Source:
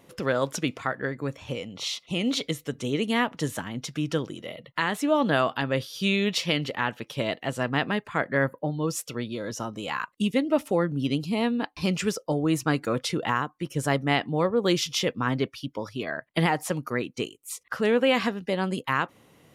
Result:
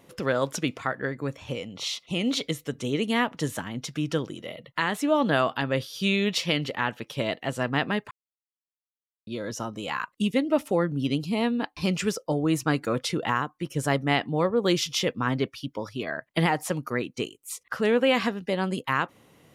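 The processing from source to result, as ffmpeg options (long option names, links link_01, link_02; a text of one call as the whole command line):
ffmpeg -i in.wav -filter_complex "[0:a]asplit=3[link_01][link_02][link_03];[link_01]atrim=end=8.11,asetpts=PTS-STARTPTS,afade=type=out:start_time=8.106:duration=0.004:curve=hsin[link_04];[link_02]atrim=start=8.11:end=9.27,asetpts=PTS-STARTPTS,volume=0[link_05];[link_03]atrim=start=9.27,asetpts=PTS-STARTPTS,afade=type=in:duration=0.004:curve=hsin[link_06];[link_04][link_05][link_06]concat=n=3:v=0:a=1" out.wav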